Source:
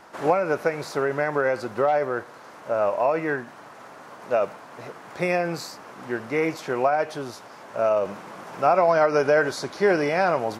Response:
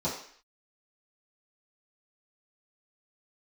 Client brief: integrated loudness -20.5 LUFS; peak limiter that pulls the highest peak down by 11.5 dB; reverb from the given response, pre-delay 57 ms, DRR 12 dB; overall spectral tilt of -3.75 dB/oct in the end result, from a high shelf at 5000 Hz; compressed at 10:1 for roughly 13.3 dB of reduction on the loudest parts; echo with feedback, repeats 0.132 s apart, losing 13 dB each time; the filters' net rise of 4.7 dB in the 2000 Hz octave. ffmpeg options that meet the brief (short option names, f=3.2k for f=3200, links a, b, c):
-filter_complex "[0:a]equalizer=f=2k:t=o:g=5.5,highshelf=f=5k:g=6,acompressor=threshold=-27dB:ratio=10,alimiter=level_in=2dB:limit=-24dB:level=0:latency=1,volume=-2dB,aecho=1:1:132|264|396:0.224|0.0493|0.0108,asplit=2[a][b];[1:a]atrim=start_sample=2205,adelay=57[c];[b][c]afir=irnorm=-1:irlink=0,volume=-20dB[d];[a][d]amix=inputs=2:normalize=0,volume=15dB"